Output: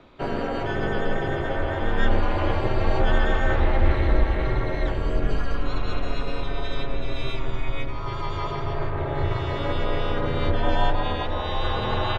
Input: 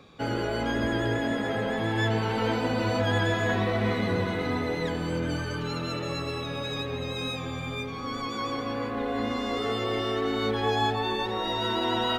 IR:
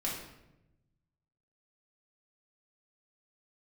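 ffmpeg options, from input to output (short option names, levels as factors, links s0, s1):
-filter_complex "[0:a]acrossover=split=120|3700[s0][s1][s2];[s1]acontrast=28[s3];[s0][s3][s2]amix=inputs=3:normalize=0,aeval=exprs='val(0)*sin(2*PI*130*n/s)':c=same,aemphasis=mode=reproduction:type=cd,asplit=2[s4][s5];[s5]asetrate=37084,aresample=44100,atempo=1.18921,volume=0.501[s6];[s4][s6]amix=inputs=2:normalize=0,asubboost=boost=9:cutoff=69,volume=0.891"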